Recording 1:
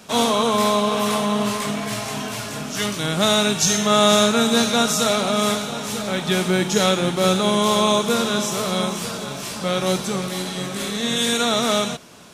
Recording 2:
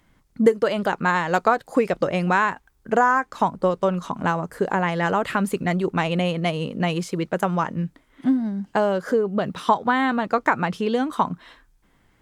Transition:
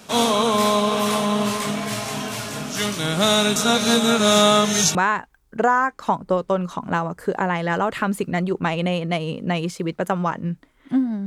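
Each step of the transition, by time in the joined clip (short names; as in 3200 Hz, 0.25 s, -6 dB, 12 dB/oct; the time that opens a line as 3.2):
recording 1
3.56–4.95 reverse
4.95 switch to recording 2 from 2.28 s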